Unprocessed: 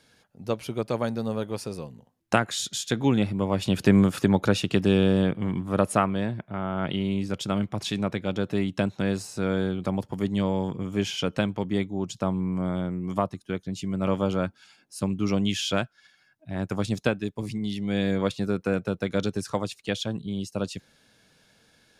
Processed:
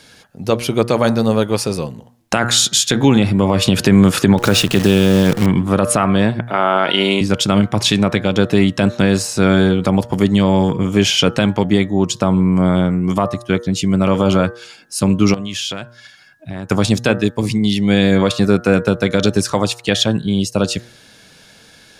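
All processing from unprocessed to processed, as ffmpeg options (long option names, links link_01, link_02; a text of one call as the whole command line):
ffmpeg -i in.wav -filter_complex "[0:a]asettb=1/sr,asplit=3[link_01][link_02][link_03];[link_01]atrim=end=4.384[link_04];[link_02]atrim=start=4.38:end=5.46,asetpts=PTS-STARTPTS,afade=type=in:duration=0.004:curve=qsin,afade=type=out:start_time=1.076:duration=0.004:curve=qsin,acompressor=mode=upward:threshold=-32dB:ratio=2.5:attack=3.2:release=140:knee=2.83:detection=peak,acrusher=bits=7:dc=4:mix=0:aa=0.000001[link_05];[link_03]atrim=start=5.456[link_06];[link_04][link_05]acrossfade=duration=0.004:curve1=hsin:curve2=qsin[link_07];[link_07][link_06]acrossfade=duration=0.004:curve1=qsin:curve2=hsin,asettb=1/sr,asplit=3[link_08][link_09][link_10];[link_08]atrim=end=6.474[link_11];[link_09]atrim=start=6.47:end=7.21,asetpts=PTS-STARTPTS,afade=type=in:duration=0.004:curve=qsin,afade=type=out:start_time=0.736:duration=0.004:curve=qsin,highpass=450,acontrast=77[link_12];[link_10]atrim=start=7.206[link_13];[link_11][link_12]acrossfade=duration=0.004:curve1=hsin:curve2=qsin[link_14];[link_14][link_13]acrossfade=duration=0.004:curve1=qsin:curve2=hsin,asettb=1/sr,asplit=3[link_15][link_16][link_17];[link_15]atrim=end=15.344[link_18];[link_16]atrim=start=15.34:end=16.7,asetpts=PTS-STARTPTS,afade=type=in:duration=0.004:curve=qsin,afade=type=out:start_time=1.356:duration=0.004:curve=qsin,acompressor=threshold=-36dB:ratio=10:attack=3.2:release=140:knee=1:detection=peak,aeval=exprs='0.0596*(abs(mod(val(0)/0.0596+3,4)-2)-1)':channel_layout=same[link_19];[link_17]atrim=start=16.696[link_20];[link_18][link_19]acrossfade=duration=0.004:curve1=hsin:curve2=qsin[link_21];[link_21][link_20]acrossfade=duration=0.004:curve1=qsin:curve2=hsin,equalizer=frequency=5400:width=0.31:gain=3,bandreject=frequency=118.9:width_type=h:width=4,bandreject=frequency=237.8:width_type=h:width=4,bandreject=frequency=356.7:width_type=h:width=4,bandreject=frequency=475.6:width_type=h:width=4,bandreject=frequency=594.5:width_type=h:width=4,bandreject=frequency=713.4:width_type=h:width=4,bandreject=frequency=832.3:width_type=h:width=4,bandreject=frequency=951.2:width_type=h:width=4,bandreject=frequency=1070.1:width_type=h:width=4,bandreject=frequency=1189:width_type=h:width=4,bandreject=frequency=1307.9:width_type=h:width=4,bandreject=frequency=1426.8:width_type=h:width=4,bandreject=frequency=1545.7:width_type=h:width=4,bandreject=frequency=1664.6:width_type=h:width=4,bandreject=frequency=1783.5:width_type=h:width=4,bandreject=frequency=1902.4:width_type=h:width=4,alimiter=level_in=15dB:limit=-1dB:release=50:level=0:latency=1,volume=-1dB" out.wav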